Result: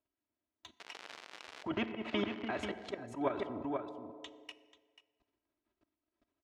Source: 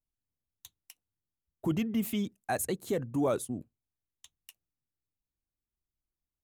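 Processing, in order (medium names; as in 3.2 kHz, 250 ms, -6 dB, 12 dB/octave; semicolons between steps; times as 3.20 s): tilt EQ -3.5 dB/octave; level held to a coarse grid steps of 23 dB; comb 3.1 ms, depth 78%; delay 488 ms -16 dB; 0.78–2.86 s: crackle 160 per s -51 dBFS; slow attack 286 ms; low-pass that closes with the level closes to 2.6 kHz, closed at -38 dBFS; band-pass 360–3600 Hz; FDN reverb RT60 1.6 s, low-frequency decay 0.85×, high-frequency decay 0.65×, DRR 15.5 dB; spectrum-flattening compressor 2:1; trim +4 dB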